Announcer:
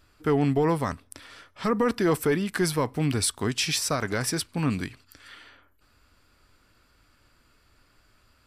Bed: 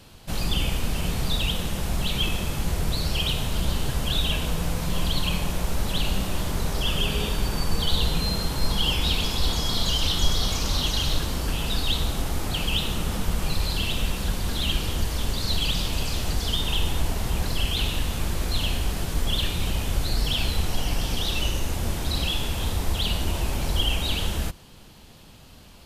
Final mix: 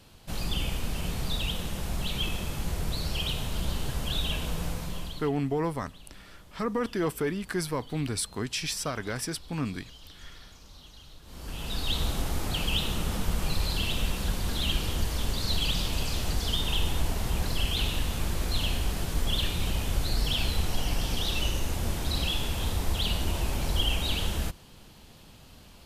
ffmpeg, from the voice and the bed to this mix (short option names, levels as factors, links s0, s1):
-filter_complex "[0:a]adelay=4950,volume=0.531[s0];[1:a]volume=7.5,afade=t=out:st=4.66:d=0.66:silence=0.0944061,afade=t=in:st=11.23:d=0.83:silence=0.0707946[s1];[s0][s1]amix=inputs=2:normalize=0"